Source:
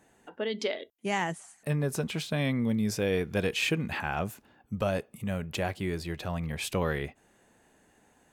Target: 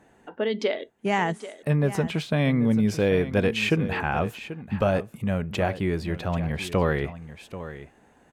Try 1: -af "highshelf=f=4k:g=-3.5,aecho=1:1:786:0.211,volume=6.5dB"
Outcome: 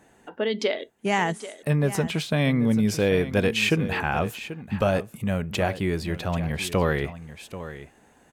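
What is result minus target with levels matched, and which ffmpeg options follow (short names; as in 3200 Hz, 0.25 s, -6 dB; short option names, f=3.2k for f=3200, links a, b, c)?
8000 Hz band +6.0 dB
-af "highshelf=f=4k:g=-12,aecho=1:1:786:0.211,volume=6.5dB"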